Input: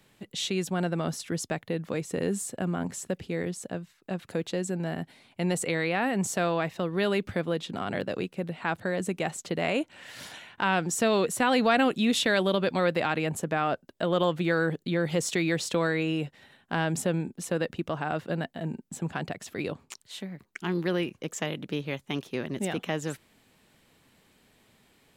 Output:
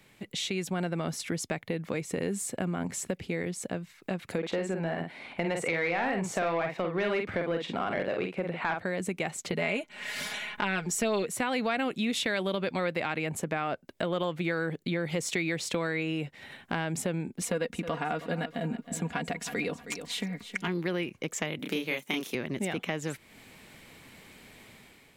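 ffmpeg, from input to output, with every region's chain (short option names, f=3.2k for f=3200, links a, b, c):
-filter_complex "[0:a]asettb=1/sr,asplit=3[a][b][c];[a]atrim=end=4.384[d];[b]atrim=start=4.38:end=8.82,asetpts=PTS-STARTPTS,afade=t=in:d=0.004:c=qsin,afade=t=out:st=4.436:d=0.004:c=qsin,highshelf=f=2.2k:g=-10,asplit=2[e][f];[f]adelay=48,volume=-6dB[g];[e][g]amix=inputs=2:normalize=0,atrim=end_sample=195804,asplit=2[h][i];[i]highpass=f=720:p=1,volume=14dB,asoftclip=type=tanh:threshold=-14dB[j];[h][j]amix=inputs=2:normalize=0,lowpass=f=3.7k:p=1,volume=-6dB[k];[c]atrim=start=8.816[l];[d][k]acrossfade=d=0.004:c1=hsin:c2=qsin[m];[m][l]acrossfade=d=0.004:c1=qsin:c2=hsin,asettb=1/sr,asplit=3[n][o][p];[n]atrim=end=9.524[q];[o]atrim=start=9.52:end=11.23,asetpts=PTS-STARTPTS,afade=t=in:d=0.004:c=qsin,afade=t=out:st=1.706:d=0.004:c=qsin,aecho=1:1:4.8:0.84,atrim=end_sample=75411,asubboost=boost=10.5:cutoff=51[r];[p]atrim=start=11.226[s];[q][r]acrossfade=d=0.004:c1=hsin:c2=qsin[t];[t][s]acrossfade=d=0.004:c1=qsin:c2=hsin,asettb=1/sr,asplit=3[u][v][w];[u]atrim=end=17.414[x];[v]atrim=start=17.41:end=20.68,asetpts=PTS-STARTPTS,afade=t=in:d=0.004:c=qsin,afade=t=out:st=3.266:d=0.004:c=qsin,aecho=1:1:4.2:0.68,atrim=end_sample=144207,aecho=1:1:316|632|948:0.178|0.0498|0.0139,atrim=end_sample=144207[y];[w]atrim=start=20.676[z];[x][y]acrossfade=d=0.004:c1=hsin:c2=qsin[aa];[aa][z]acrossfade=d=0.004:c1=qsin:c2=hsin,asettb=1/sr,asplit=3[ab][ac][ad];[ab]atrim=end=21.594[ae];[ac]atrim=start=21.59:end=22.35,asetpts=PTS-STARTPTS,afade=t=in:d=0.004:c=qsin,afade=t=out:st=0.756:d=0.004:c=qsin,highpass=f=180:w=0.5412,highpass=f=180:w=1.3066,aemphasis=mode=production:type=50kf,asplit=2[af][ag];[ag]adelay=31,volume=-2.5dB[ah];[af][ah]amix=inputs=2:normalize=0,atrim=end_sample=33516[ai];[ad]atrim=start=22.346[aj];[ae][ai]acrossfade=d=0.004:c1=hsin:c2=qsin[ak];[ak][aj]acrossfade=d=0.004:c1=qsin:c2=hsin,dynaudnorm=f=200:g=5:m=8dB,equalizer=f=2.2k:t=o:w=0.31:g=7.5,acompressor=threshold=-36dB:ratio=2.5,volume=1.5dB"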